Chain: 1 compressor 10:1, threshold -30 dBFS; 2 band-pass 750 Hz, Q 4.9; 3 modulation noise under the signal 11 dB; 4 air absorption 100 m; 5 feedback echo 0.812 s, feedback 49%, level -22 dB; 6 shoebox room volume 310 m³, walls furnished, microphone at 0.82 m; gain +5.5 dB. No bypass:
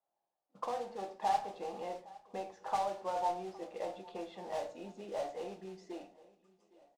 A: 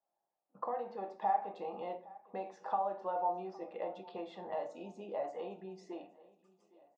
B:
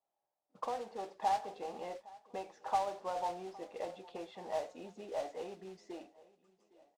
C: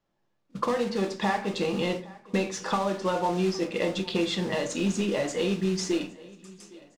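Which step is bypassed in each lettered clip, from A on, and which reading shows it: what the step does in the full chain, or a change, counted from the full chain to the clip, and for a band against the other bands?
3, 4 kHz band -8.5 dB; 6, echo-to-direct -6.5 dB to -21.0 dB; 2, 1 kHz band -15.0 dB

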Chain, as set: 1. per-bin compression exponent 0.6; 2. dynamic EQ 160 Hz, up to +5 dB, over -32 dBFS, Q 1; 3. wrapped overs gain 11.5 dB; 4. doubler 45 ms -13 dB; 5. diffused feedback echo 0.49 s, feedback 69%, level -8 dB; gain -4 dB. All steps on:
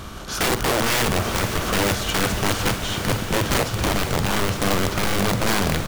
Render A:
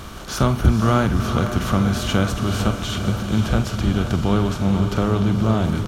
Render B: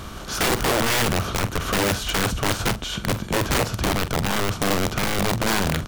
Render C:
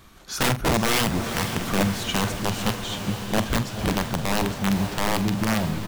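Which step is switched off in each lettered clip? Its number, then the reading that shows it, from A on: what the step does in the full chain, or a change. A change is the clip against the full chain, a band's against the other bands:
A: 3, crest factor change +4.0 dB; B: 5, echo-to-direct -5.0 dB to none; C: 1, 250 Hz band +4.5 dB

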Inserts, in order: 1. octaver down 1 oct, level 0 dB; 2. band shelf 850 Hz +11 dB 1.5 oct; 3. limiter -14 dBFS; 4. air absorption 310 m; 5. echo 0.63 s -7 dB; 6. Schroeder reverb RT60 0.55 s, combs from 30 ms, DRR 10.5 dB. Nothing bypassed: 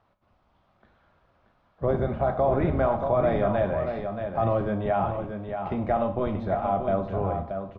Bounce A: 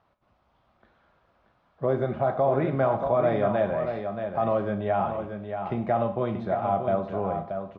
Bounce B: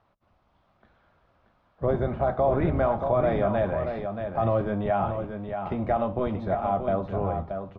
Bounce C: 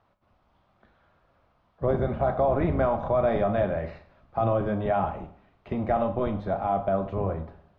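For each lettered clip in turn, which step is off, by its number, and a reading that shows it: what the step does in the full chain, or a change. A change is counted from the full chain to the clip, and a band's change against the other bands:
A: 1, 125 Hz band -2.5 dB; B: 6, echo-to-direct -5.0 dB to -7.0 dB; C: 5, echo-to-direct -5.0 dB to -10.5 dB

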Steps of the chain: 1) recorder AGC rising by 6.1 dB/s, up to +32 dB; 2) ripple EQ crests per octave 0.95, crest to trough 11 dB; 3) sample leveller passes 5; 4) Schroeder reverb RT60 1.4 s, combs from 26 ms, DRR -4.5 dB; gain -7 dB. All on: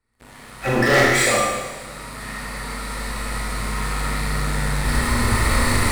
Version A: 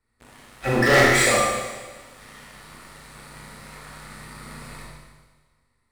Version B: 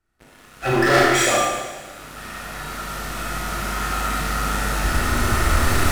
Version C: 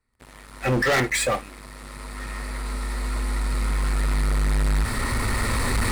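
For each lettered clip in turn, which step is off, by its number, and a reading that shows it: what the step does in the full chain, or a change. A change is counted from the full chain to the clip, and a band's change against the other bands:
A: 1, crest factor change +4.0 dB; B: 2, 1 kHz band +2.5 dB; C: 4, crest factor change -10.5 dB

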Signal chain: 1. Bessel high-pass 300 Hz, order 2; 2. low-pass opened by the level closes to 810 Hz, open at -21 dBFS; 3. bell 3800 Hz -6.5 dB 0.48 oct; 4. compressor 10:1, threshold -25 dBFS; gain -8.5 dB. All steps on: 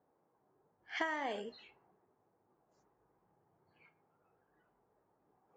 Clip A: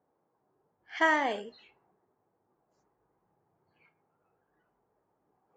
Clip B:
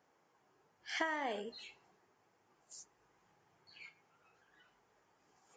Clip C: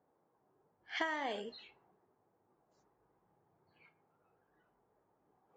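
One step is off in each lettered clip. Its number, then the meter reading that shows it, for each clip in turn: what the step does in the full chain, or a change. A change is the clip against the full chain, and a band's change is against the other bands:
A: 4, mean gain reduction 5.0 dB; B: 2, 8 kHz band +10.0 dB; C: 3, 4 kHz band +3.0 dB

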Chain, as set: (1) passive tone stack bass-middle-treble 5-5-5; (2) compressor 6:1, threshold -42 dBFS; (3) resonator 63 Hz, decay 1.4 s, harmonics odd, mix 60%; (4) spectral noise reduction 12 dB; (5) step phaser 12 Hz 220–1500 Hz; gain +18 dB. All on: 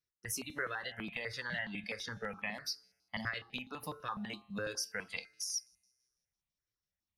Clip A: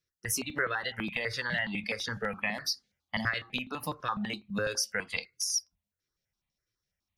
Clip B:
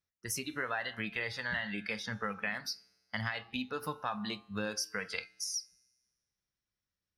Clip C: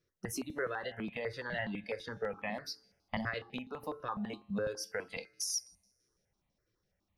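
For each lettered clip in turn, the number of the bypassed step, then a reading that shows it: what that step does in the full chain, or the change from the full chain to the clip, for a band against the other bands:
3, loudness change +7.5 LU; 5, 8 kHz band -2.5 dB; 1, 500 Hz band +5.5 dB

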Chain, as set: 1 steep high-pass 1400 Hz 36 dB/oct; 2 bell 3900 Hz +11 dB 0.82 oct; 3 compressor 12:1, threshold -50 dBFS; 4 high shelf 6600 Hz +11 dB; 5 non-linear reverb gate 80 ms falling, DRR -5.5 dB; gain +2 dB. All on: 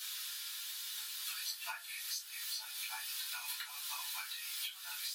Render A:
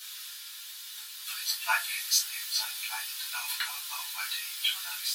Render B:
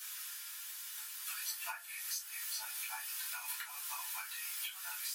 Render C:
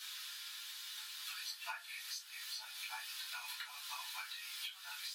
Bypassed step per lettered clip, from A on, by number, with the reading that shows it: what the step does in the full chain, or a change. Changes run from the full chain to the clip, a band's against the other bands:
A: 3, mean gain reduction 6.5 dB; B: 2, 4 kHz band -6.5 dB; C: 4, 8 kHz band -6.0 dB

